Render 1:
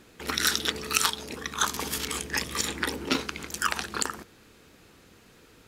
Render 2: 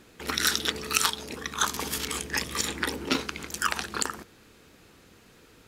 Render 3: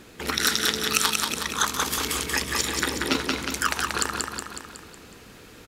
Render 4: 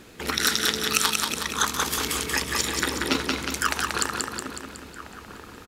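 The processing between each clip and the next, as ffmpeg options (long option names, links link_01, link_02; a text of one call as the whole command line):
ffmpeg -i in.wav -af anull out.wav
ffmpeg -i in.wav -filter_complex "[0:a]aecho=1:1:184|368|552|736|920|1104:0.631|0.309|0.151|0.0742|0.0364|0.0178,asplit=2[link_01][link_02];[link_02]acompressor=threshold=-36dB:ratio=6,volume=1dB[link_03];[link_01][link_03]amix=inputs=2:normalize=0" out.wav
ffmpeg -i in.wav -filter_complex "[0:a]asplit=2[link_01][link_02];[link_02]adelay=1341,volume=-12dB,highshelf=frequency=4000:gain=-30.2[link_03];[link_01][link_03]amix=inputs=2:normalize=0" out.wav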